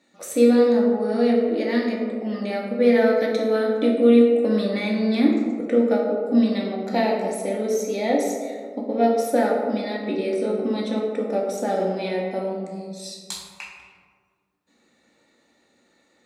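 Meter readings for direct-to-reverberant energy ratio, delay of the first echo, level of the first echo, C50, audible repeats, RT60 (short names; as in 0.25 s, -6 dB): -2.0 dB, none, none, 2.5 dB, none, 1.8 s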